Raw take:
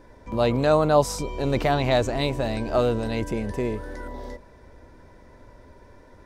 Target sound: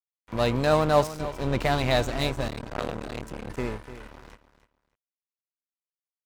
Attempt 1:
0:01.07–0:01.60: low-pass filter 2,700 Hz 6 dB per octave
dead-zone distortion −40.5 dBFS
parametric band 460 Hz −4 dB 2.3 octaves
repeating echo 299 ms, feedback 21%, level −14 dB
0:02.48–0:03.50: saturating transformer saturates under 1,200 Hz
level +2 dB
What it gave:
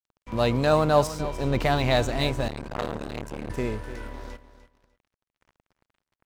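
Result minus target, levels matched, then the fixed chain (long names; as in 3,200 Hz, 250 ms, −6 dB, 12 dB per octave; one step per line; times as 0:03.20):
dead-zone distortion: distortion −8 dB
0:01.07–0:01.60: low-pass filter 2,700 Hz 6 dB per octave
dead-zone distortion −32 dBFS
parametric band 460 Hz −4 dB 2.3 octaves
repeating echo 299 ms, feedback 21%, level −14 dB
0:02.48–0:03.50: saturating transformer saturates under 1,200 Hz
level +2 dB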